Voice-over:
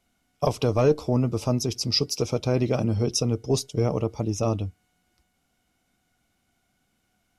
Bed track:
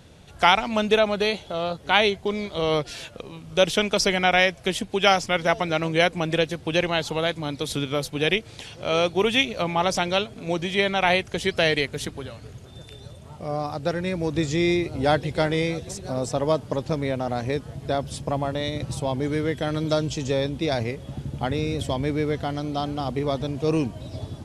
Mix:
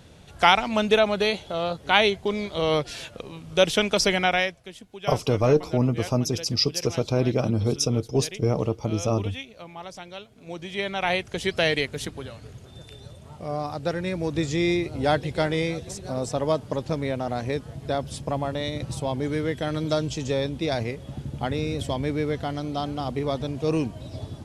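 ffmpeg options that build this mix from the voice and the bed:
-filter_complex "[0:a]adelay=4650,volume=0.5dB[a];[1:a]volume=15dB,afade=t=out:st=4.15:d=0.51:silence=0.149624,afade=t=in:st=10.26:d=1.25:silence=0.177828[b];[a][b]amix=inputs=2:normalize=0"

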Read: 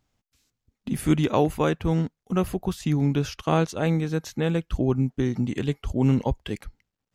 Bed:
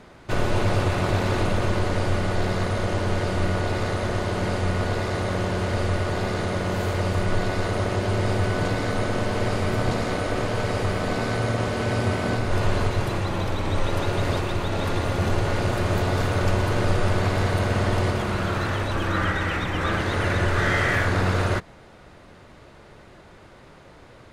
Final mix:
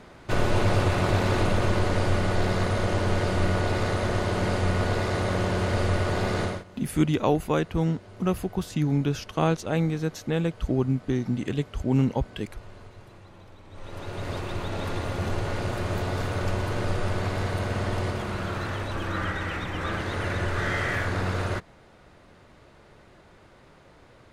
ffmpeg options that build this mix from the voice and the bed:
-filter_complex "[0:a]adelay=5900,volume=-1.5dB[a];[1:a]volume=17.5dB,afade=t=out:st=6.43:d=0.21:silence=0.0707946,afade=t=in:st=13.7:d=0.88:silence=0.125893[b];[a][b]amix=inputs=2:normalize=0"

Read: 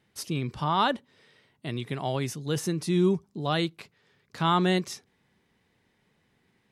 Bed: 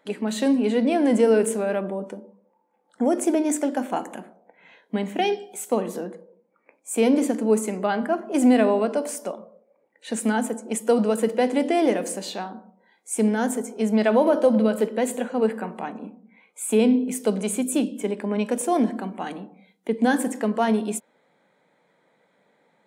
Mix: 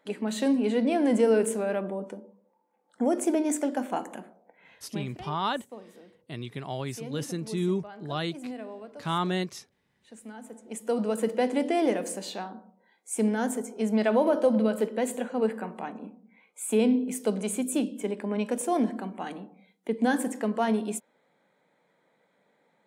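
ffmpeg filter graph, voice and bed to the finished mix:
-filter_complex "[0:a]adelay=4650,volume=-4.5dB[a];[1:a]volume=12.5dB,afade=t=out:st=4.65:d=0.53:silence=0.141254,afade=t=in:st=10.4:d=0.89:silence=0.149624[b];[a][b]amix=inputs=2:normalize=0"

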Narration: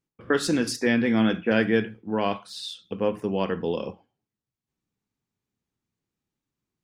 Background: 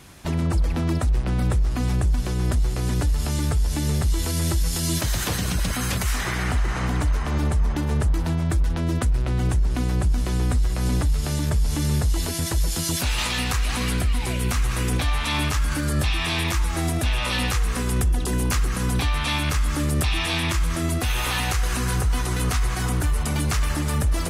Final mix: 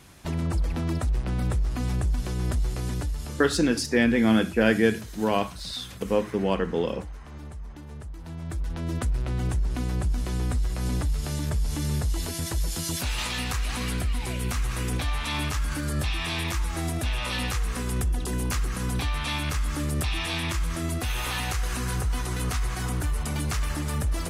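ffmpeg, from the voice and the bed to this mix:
-filter_complex "[0:a]adelay=3100,volume=1dB[a];[1:a]volume=8.5dB,afade=t=out:st=2.72:d=0.87:silence=0.211349,afade=t=in:st=8.18:d=0.86:silence=0.223872[b];[a][b]amix=inputs=2:normalize=0"

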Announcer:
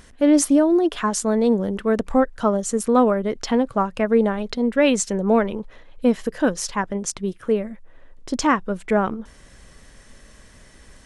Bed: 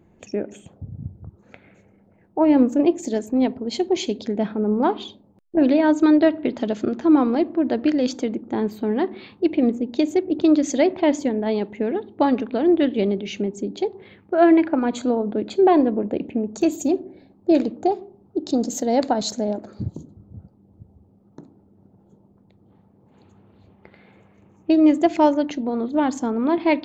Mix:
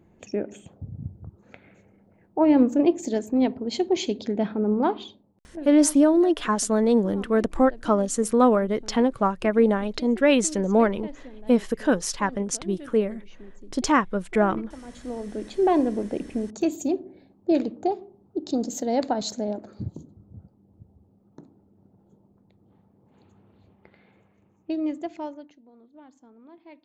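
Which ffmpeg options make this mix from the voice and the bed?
-filter_complex "[0:a]adelay=5450,volume=-1.5dB[a];[1:a]volume=15.5dB,afade=t=out:st=4.73:d=0.93:silence=0.1,afade=t=in:st=14.84:d=0.92:silence=0.133352,afade=t=out:st=23.49:d=2.1:silence=0.0562341[b];[a][b]amix=inputs=2:normalize=0"

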